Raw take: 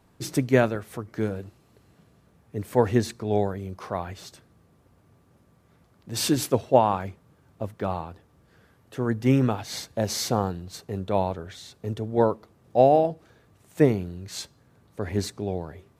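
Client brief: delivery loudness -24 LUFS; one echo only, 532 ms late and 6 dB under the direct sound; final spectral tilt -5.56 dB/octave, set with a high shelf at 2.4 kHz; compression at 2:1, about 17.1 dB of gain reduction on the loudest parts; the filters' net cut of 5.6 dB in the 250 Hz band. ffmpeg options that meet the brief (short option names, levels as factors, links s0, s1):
-af "equalizer=f=250:t=o:g=-7,highshelf=f=2400:g=-7.5,acompressor=threshold=0.00501:ratio=2,aecho=1:1:532:0.501,volume=7.94"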